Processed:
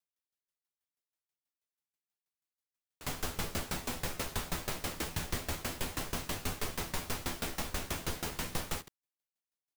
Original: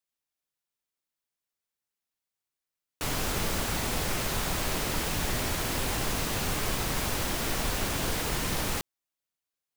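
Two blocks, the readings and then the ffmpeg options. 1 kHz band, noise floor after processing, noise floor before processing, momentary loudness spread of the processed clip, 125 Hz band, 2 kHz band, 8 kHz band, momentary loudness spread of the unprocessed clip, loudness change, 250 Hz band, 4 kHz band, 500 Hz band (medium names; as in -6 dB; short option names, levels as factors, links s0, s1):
-8.0 dB, under -85 dBFS, under -85 dBFS, 2 LU, -7.5 dB, -8.0 dB, -8.0 dB, 1 LU, -8.0 dB, -7.5 dB, -8.0 dB, -8.0 dB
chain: -af "aecho=1:1:12|71:0.562|0.224,aeval=exprs='val(0)*pow(10,-20*if(lt(mod(6.2*n/s,1),2*abs(6.2)/1000),1-mod(6.2*n/s,1)/(2*abs(6.2)/1000),(mod(6.2*n/s,1)-2*abs(6.2)/1000)/(1-2*abs(6.2)/1000))/20)':c=same,volume=0.75"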